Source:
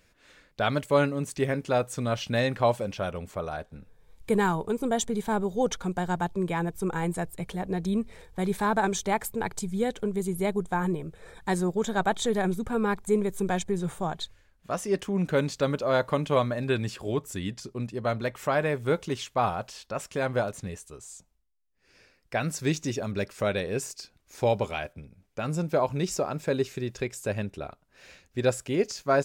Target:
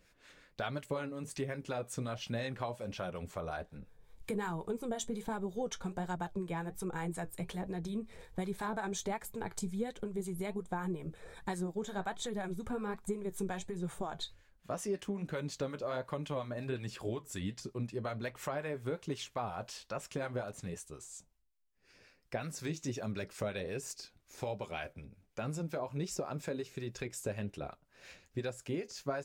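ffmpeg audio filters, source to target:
-filter_complex "[0:a]acompressor=threshold=-31dB:ratio=6,flanger=delay=5.5:depth=5.6:regen=-62:speed=1.3:shape=sinusoidal,acrossover=split=740[a][b];[a]aeval=exprs='val(0)*(1-0.5/2+0.5/2*cos(2*PI*5.5*n/s))':c=same[c];[b]aeval=exprs='val(0)*(1-0.5/2-0.5/2*cos(2*PI*5.5*n/s))':c=same[d];[c][d]amix=inputs=2:normalize=0,volume=3dB"

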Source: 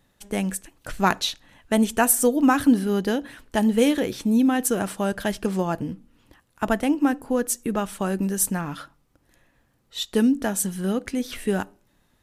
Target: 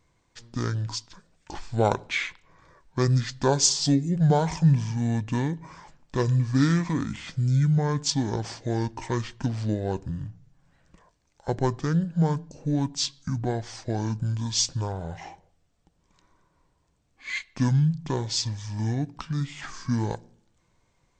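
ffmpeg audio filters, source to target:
-af "asetrate=25442,aresample=44100,volume=-3dB"

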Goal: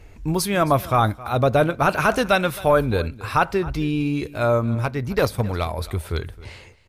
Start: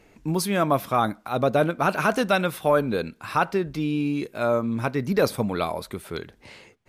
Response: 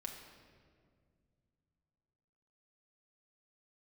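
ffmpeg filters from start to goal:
-filter_complex "[0:a]lowshelf=f=120:t=q:w=1.5:g=14,asettb=1/sr,asplit=3[a][b][c];[a]atrim=end=4.754[d];[b]atrim=start=4.75:end=5.78,asetpts=PTS-STARTPTS,afade=t=in:d=0.004:c=qsin,afade=t=out:st=1.026:d=0.004:c=qsin,aeval=exprs='0.316*(cos(1*acos(clip(val(0)/0.316,-1,1)))-cos(1*PI/2))+0.0447*(cos(3*acos(clip(val(0)/0.316,-1,1)))-cos(3*PI/2))':c=same[e];[c]atrim=start=5.776[f];[d][e]acrossfade=d=0.004:c1=hsin:c2=qsin[g];[g][f]acrossfade=d=0.004:c1=qsin:c2=hsin,aecho=1:1:266:0.112,volume=3.5dB"

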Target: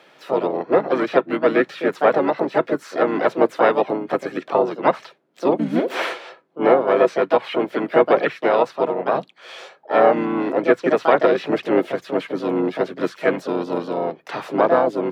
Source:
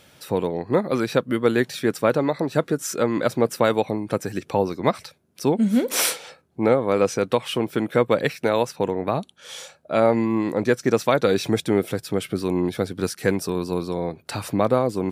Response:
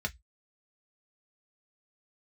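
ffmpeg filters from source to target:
-filter_complex "[0:a]asplit=3[a][b][c];[b]asetrate=33038,aresample=44100,atempo=1.33484,volume=-6dB[d];[c]asetrate=58866,aresample=44100,atempo=0.749154,volume=-6dB[e];[a][d][e]amix=inputs=3:normalize=0,highpass=f=130:w=0.5412,highpass=f=130:w=1.3066,acrossover=split=260 4200:gain=0.158 1 0.112[f][g][h];[f][g][h]amix=inputs=3:normalize=0,acrossover=split=3200[i][j];[j]acompressor=threshold=-44dB:ratio=4:attack=1:release=60[k];[i][k]amix=inputs=2:normalize=0,asplit=2[l][m];[1:a]atrim=start_sample=2205[n];[m][n]afir=irnorm=-1:irlink=0,volume=-18.5dB[o];[l][o]amix=inputs=2:normalize=0,volume=2.5dB"

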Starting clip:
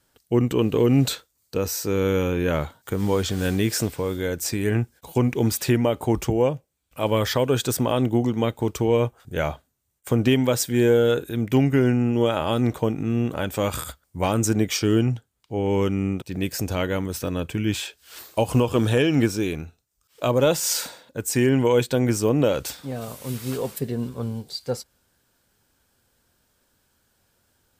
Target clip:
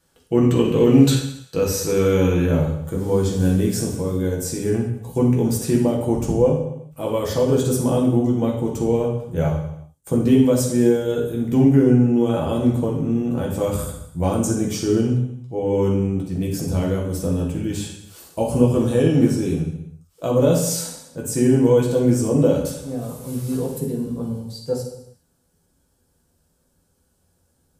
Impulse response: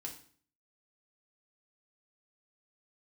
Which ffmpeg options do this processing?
-filter_complex "[0:a]asetnsamples=n=441:p=0,asendcmd='2.46 equalizer g -13',equalizer=f=2.4k:t=o:w=2.6:g=-2.5[a];[1:a]atrim=start_sample=2205,afade=t=out:st=0.28:d=0.01,atrim=end_sample=12789,asetrate=24696,aresample=44100[b];[a][b]afir=irnorm=-1:irlink=0,volume=3dB"

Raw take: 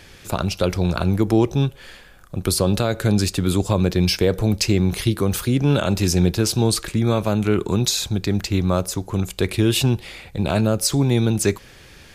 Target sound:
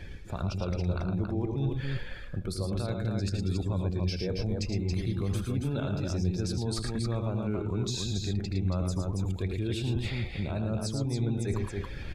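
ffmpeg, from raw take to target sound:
-filter_complex "[0:a]areverse,acompressor=threshold=-33dB:ratio=5,areverse,highshelf=f=9.7k:g=-11.5,aecho=1:1:78.72|110.8|277:0.316|0.562|0.631,afftdn=nr=12:nf=-47,lowshelf=f=100:g=10.5,bandreject=f=2.9k:w=14,asplit=2[a][b];[b]alimiter=level_in=2dB:limit=-24dB:level=0:latency=1:release=301,volume=-2dB,volume=-1.5dB[c];[a][c]amix=inputs=2:normalize=0,volume=-4dB"

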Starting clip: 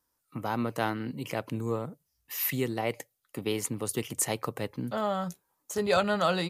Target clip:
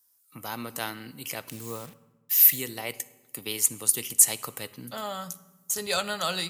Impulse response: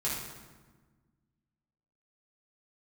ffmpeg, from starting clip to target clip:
-filter_complex "[0:a]asettb=1/sr,asplit=3[a][b][c];[a]atrim=end=1.484[d];[b]atrim=start=1.48:end=2.58,asetpts=PTS-STARTPTS,afade=t=in:d=0.004:c=qsin,afade=t=out:st=1.096:d=0.004:c=qsin,acrusher=bits=7:mix=0:aa=0.5[e];[c]atrim=start=2.576[f];[d][e]acrossfade=d=0.004:c1=hsin:c2=qsin[g];[g][f]acrossfade=d=0.004:c1=qsin:c2=hsin,crystalizer=i=8.5:c=0,asplit=2[h][i];[1:a]atrim=start_sample=2205,asetrate=52920,aresample=44100[j];[i][j]afir=irnorm=-1:irlink=0,volume=-18.5dB[k];[h][k]amix=inputs=2:normalize=0,volume=-9dB"

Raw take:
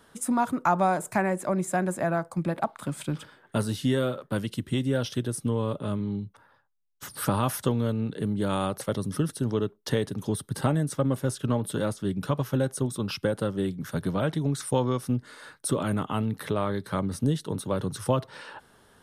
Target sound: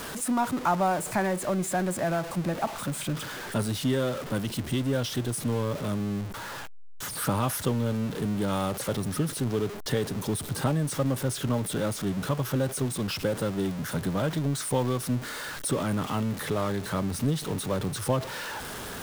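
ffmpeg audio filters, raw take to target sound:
-af "aeval=exprs='val(0)+0.5*0.0355*sgn(val(0))':c=same,volume=-3dB"

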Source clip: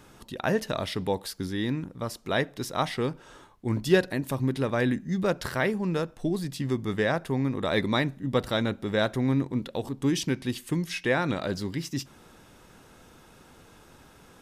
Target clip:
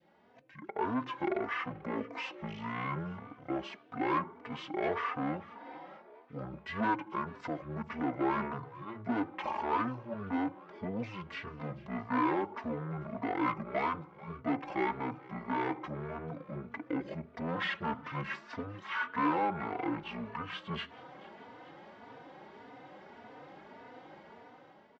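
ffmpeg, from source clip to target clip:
-filter_complex "[0:a]adynamicequalizer=threshold=0.00708:dfrequency=1800:dqfactor=1.2:tfrequency=1800:tqfactor=1.2:attack=5:release=100:ratio=0.375:range=2.5:mode=boostabove:tftype=bell,dynaudnorm=f=220:g=5:m=13dB,asoftclip=type=tanh:threshold=-17.5dB,highpass=500,lowpass=3.5k,asplit=5[a][b][c][d][e];[b]adelay=253,afreqshift=130,volume=-20.5dB[f];[c]adelay=506,afreqshift=260,volume=-26dB[g];[d]adelay=759,afreqshift=390,volume=-31.5dB[h];[e]adelay=1012,afreqshift=520,volume=-37dB[i];[a][f][g][h][i]amix=inputs=5:normalize=0,asetrate=25442,aresample=44100,asplit=2[j][k];[k]adelay=3.3,afreqshift=1.7[l];[j][l]amix=inputs=2:normalize=1,volume=-4dB"

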